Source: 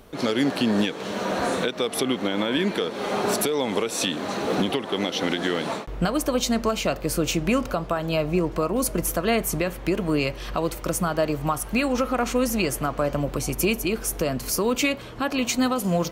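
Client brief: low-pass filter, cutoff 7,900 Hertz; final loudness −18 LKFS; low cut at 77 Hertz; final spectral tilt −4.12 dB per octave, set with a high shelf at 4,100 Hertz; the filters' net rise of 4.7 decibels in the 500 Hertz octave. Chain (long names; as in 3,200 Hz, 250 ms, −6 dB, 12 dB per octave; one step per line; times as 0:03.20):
high-pass filter 77 Hz
low-pass filter 7,900 Hz
parametric band 500 Hz +5.5 dB
high-shelf EQ 4,100 Hz +5.5 dB
level +4 dB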